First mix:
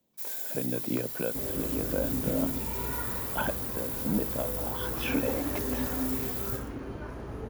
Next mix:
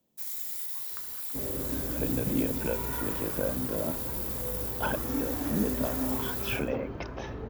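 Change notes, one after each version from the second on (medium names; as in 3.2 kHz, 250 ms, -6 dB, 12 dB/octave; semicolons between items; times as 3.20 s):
speech: entry +1.45 s; second sound: add distance through air 150 m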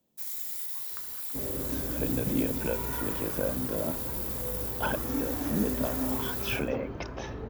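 speech: remove distance through air 77 m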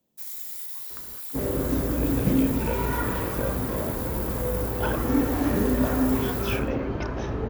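second sound +9.5 dB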